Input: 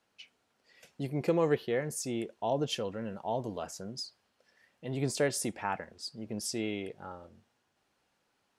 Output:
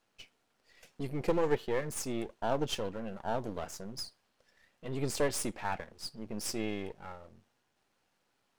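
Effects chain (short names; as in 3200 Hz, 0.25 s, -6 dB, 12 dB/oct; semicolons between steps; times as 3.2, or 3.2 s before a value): half-wave gain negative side -12 dB; gain +2.5 dB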